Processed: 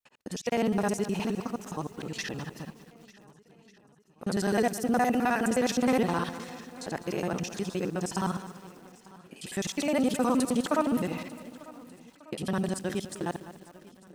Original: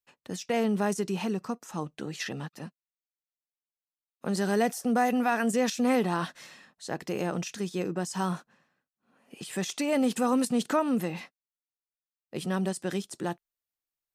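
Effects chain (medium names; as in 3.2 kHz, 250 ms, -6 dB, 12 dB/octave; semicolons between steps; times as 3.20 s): time reversed locally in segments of 52 ms; vibrato 2.1 Hz 12 cents; shuffle delay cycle 1493 ms, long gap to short 1.5:1, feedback 33%, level -21.5 dB; bit-crushed delay 202 ms, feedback 55%, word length 8-bit, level -13.5 dB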